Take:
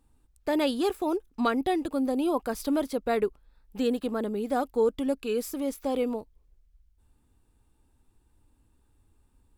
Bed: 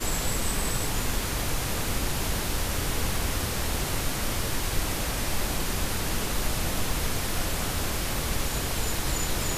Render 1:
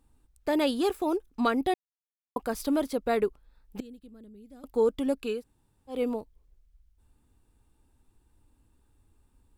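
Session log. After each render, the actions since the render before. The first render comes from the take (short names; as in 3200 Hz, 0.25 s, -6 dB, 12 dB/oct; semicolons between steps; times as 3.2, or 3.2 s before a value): 1.74–2.36 mute; 3.8–4.64 passive tone stack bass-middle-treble 10-0-1; 5.36–5.95 room tone, crossfade 0.16 s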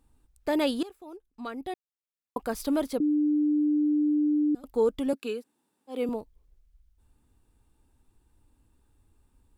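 0.83–2.42 fade in quadratic, from -18.5 dB; 3–4.55 bleep 298 Hz -21 dBFS; 5.13–6.09 Chebyshev high-pass 230 Hz, order 3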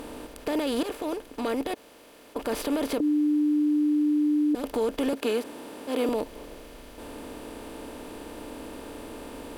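per-bin compression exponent 0.4; limiter -18 dBFS, peak gain reduction 8.5 dB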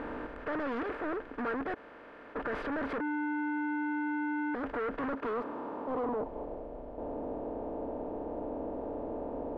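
hard clip -33.5 dBFS, distortion -5 dB; low-pass sweep 1600 Hz -> 700 Hz, 4.86–6.68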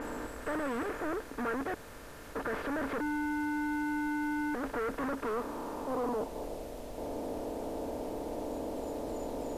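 add bed -24 dB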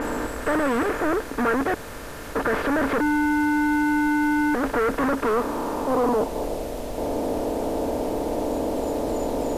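gain +12 dB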